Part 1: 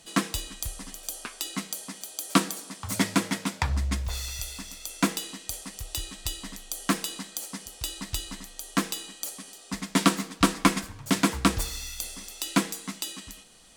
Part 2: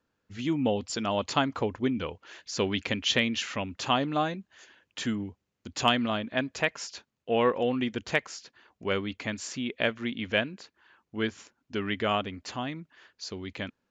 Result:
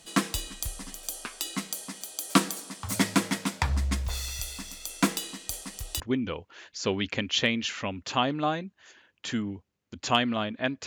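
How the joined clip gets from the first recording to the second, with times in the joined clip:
part 1
6 switch to part 2 from 1.73 s

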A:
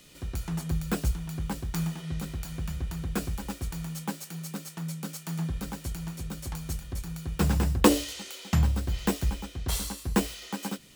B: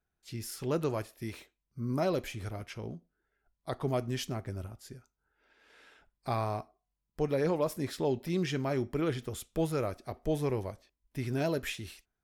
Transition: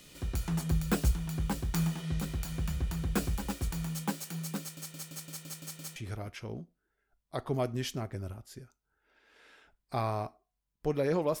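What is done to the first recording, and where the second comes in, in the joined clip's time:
A
4.6 stutter in place 0.17 s, 8 plays
5.96 switch to B from 2.3 s

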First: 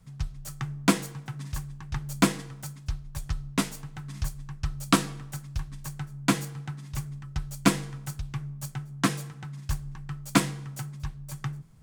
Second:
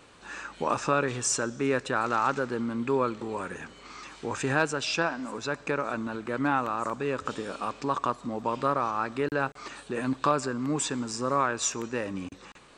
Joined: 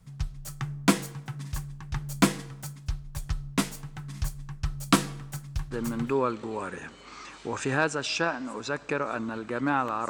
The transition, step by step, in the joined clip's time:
first
5.92 switch to second from 2.7 s, crossfade 0.42 s logarithmic

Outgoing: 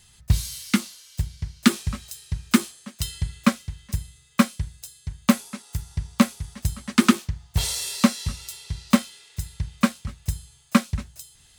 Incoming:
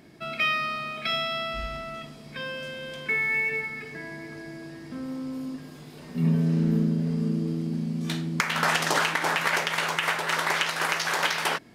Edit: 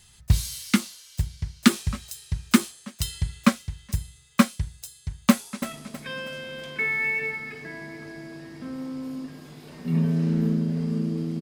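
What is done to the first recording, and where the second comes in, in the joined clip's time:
outgoing
5.3–5.64 echo throw 0.32 s, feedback 40%, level -6.5 dB
5.64 switch to incoming from 1.94 s

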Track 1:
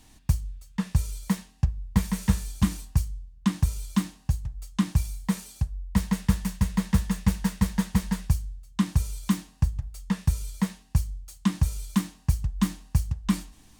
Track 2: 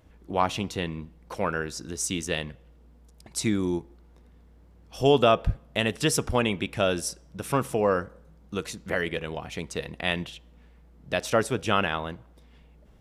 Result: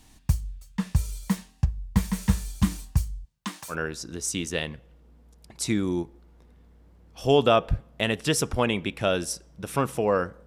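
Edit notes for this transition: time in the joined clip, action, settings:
track 1
3.24–3.76 HPF 180 Hz -> 1100 Hz
3.72 switch to track 2 from 1.48 s, crossfade 0.08 s

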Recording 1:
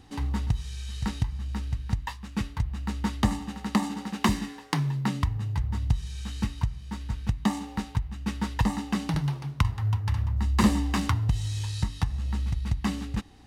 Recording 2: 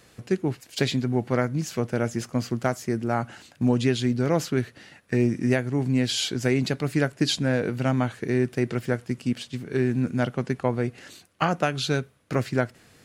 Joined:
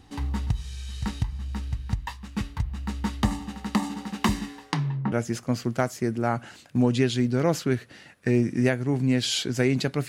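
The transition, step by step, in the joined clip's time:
recording 1
4.71–5.12 LPF 8400 Hz -> 1000 Hz
5.12 switch to recording 2 from 1.98 s

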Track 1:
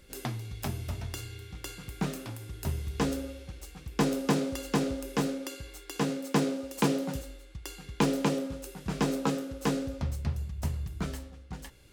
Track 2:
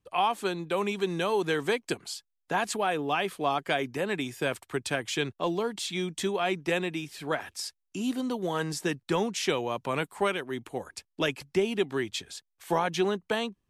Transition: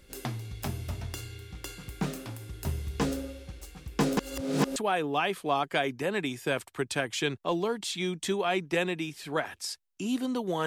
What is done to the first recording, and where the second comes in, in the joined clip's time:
track 1
4.17–4.76 reverse
4.76 switch to track 2 from 2.71 s

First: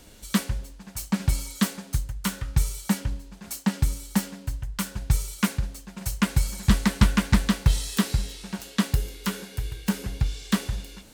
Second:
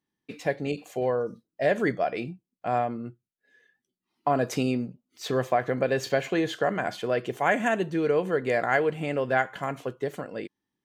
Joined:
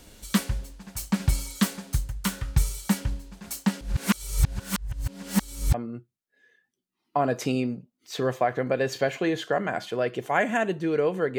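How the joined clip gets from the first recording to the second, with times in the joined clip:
first
3.81–5.74 reverse
5.74 switch to second from 2.85 s

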